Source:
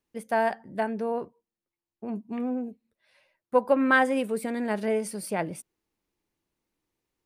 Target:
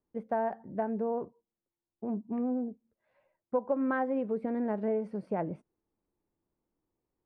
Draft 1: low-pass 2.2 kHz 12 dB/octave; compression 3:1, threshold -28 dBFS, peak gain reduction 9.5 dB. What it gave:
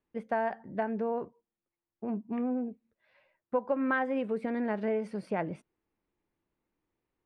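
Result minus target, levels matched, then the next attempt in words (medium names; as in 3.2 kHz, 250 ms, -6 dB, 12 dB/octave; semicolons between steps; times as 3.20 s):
2 kHz band +6.0 dB
low-pass 980 Hz 12 dB/octave; compression 3:1, threshold -28 dBFS, peak gain reduction 9 dB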